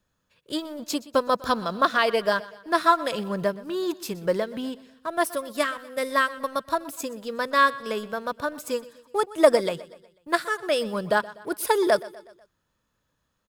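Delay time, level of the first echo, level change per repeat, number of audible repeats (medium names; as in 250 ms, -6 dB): 123 ms, -19.0 dB, -6.0 dB, 3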